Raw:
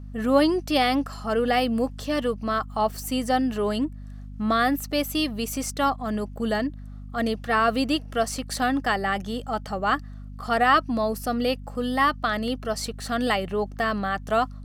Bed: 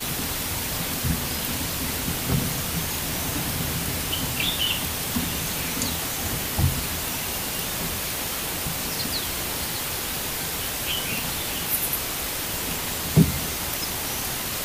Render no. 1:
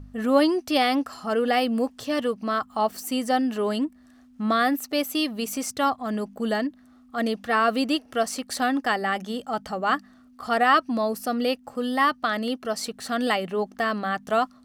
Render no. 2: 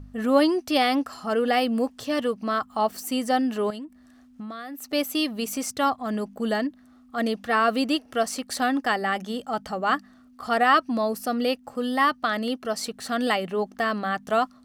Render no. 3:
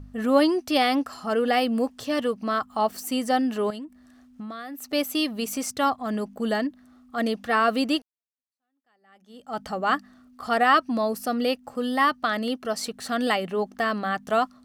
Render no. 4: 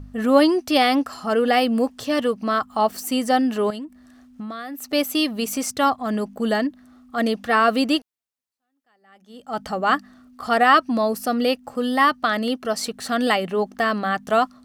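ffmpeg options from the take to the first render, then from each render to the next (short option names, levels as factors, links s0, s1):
-af "bandreject=f=50:t=h:w=4,bandreject=f=100:t=h:w=4,bandreject=f=150:t=h:w=4,bandreject=f=200:t=h:w=4"
-filter_complex "[0:a]asettb=1/sr,asplit=3[s0][s1][s2];[s0]atrim=end=3.704[s3];[s1]atrim=start=3.7:end=4.93,asetpts=PTS-STARTPTS,afade=t=in:d=0.004:c=qsin,afade=t=out:st=1.226:d=0.004:c=qsin,acompressor=threshold=0.0224:ratio=16:attack=3.2:release=140:knee=1:detection=peak[s4];[s2]atrim=start=4.926[s5];[s3][s4]acrossfade=d=0.004:c1=hsin:c2=qsin[s6];[s6][s5]acrossfade=d=0.004:c1=qsin:c2=hsin"
-filter_complex "[0:a]asplit=2[s0][s1];[s0]atrim=end=8.02,asetpts=PTS-STARTPTS,afade=t=out:st=8.016:d=0.004:c=hsin[s2];[s1]atrim=start=8.02,asetpts=PTS-STARTPTS,afade=t=in:d=1.58:c=exp[s3];[s2][s3]concat=n=2:v=0:a=1"
-af "volume=1.58"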